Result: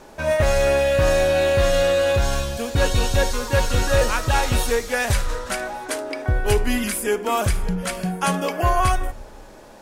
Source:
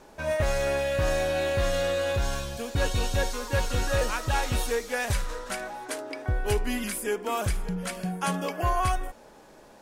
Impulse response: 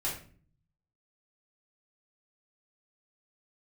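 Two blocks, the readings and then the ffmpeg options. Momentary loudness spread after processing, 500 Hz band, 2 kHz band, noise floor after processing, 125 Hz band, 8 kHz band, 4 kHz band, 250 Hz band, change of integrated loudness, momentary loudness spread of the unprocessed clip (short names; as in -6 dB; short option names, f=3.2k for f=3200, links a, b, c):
8 LU, +8.0 dB, +7.0 dB, -43 dBFS, +7.0 dB, +7.0 dB, +7.0 dB, +7.0 dB, +7.5 dB, 7 LU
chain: -filter_complex "[0:a]asplit=2[a][b];[1:a]atrim=start_sample=2205,asetrate=30429,aresample=44100[c];[b][c]afir=irnorm=-1:irlink=0,volume=-22.5dB[d];[a][d]amix=inputs=2:normalize=0,volume=6.5dB"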